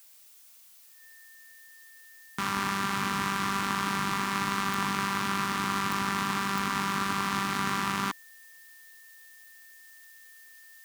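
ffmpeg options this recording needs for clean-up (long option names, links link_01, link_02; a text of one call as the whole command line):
ffmpeg -i in.wav -af "adeclick=threshold=4,bandreject=frequency=1800:width=30,afftdn=noise_reduction=26:noise_floor=-53" out.wav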